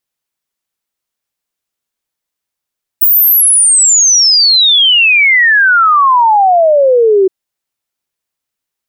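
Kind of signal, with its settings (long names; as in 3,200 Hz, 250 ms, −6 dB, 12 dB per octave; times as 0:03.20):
exponential sine sweep 16,000 Hz → 370 Hz 4.27 s −4.5 dBFS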